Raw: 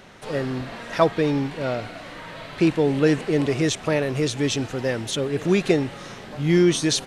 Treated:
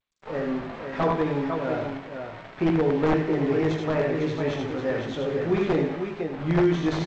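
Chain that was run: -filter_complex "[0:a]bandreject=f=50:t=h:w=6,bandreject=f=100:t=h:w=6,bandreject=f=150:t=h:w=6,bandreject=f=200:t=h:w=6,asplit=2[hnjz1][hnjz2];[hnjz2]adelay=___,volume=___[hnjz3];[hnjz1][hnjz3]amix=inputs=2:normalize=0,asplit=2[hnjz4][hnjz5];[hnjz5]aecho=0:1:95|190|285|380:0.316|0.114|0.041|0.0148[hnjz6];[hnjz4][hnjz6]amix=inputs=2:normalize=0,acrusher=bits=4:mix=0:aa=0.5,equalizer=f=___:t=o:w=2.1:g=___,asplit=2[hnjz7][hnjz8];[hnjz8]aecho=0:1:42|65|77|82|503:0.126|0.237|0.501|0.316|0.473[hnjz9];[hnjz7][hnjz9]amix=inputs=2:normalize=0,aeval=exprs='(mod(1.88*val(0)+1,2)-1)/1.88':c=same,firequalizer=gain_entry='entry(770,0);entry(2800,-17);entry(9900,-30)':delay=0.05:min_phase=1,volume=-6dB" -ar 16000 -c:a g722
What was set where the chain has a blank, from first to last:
19, -4dB, 2.9k, 10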